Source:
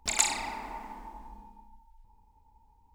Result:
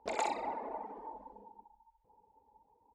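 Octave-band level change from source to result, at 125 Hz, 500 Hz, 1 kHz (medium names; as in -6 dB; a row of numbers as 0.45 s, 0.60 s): under -10 dB, +6.5 dB, -0.5 dB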